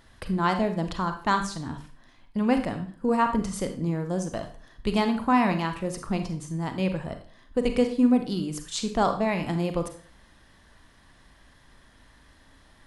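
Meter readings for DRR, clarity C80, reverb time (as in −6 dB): 6.5 dB, 14.0 dB, 0.45 s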